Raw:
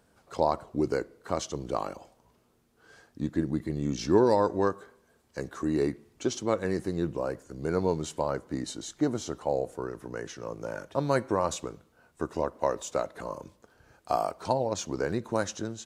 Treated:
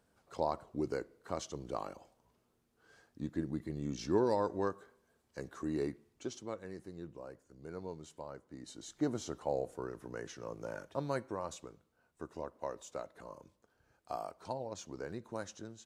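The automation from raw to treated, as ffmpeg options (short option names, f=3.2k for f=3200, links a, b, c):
-af "volume=2dB,afade=t=out:st=5.78:d=0.88:silence=0.375837,afade=t=in:st=8.58:d=0.48:silence=0.298538,afade=t=out:st=10.73:d=0.6:silence=0.473151"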